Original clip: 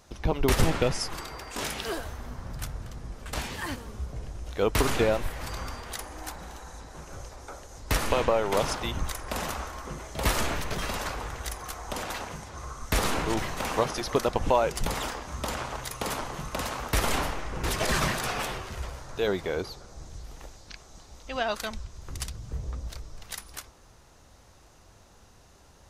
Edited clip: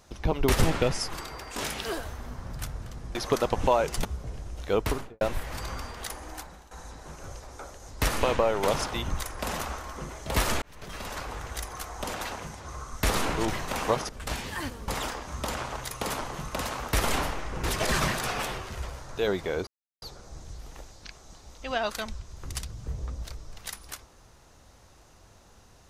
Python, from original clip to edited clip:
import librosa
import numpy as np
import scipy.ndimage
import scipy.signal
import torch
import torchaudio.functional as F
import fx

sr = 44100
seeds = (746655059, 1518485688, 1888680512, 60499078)

y = fx.studio_fade_out(x, sr, start_s=4.59, length_s=0.51)
y = fx.edit(y, sr, fx.swap(start_s=3.15, length_s=0.79, other_s=13.98, other_length_s=0.9),
    fx.fade_out_to(start_s=6.15, length_s=0.45, floor_db=-14.5),
    fx.fade_in_span(start_s=10.51, length_s=1.17, curve='qsin'),
    fx.insert_silence(at_s=19.67, length_s=0.35), tone=tone)